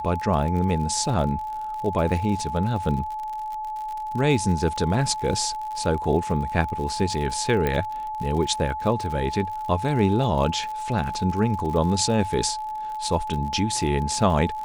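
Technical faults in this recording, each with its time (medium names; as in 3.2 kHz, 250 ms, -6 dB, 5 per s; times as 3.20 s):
crackle 64 per s -31 dBFS
whine 860 Hz -28 dBFS
7.67 s: pop -11 dBFS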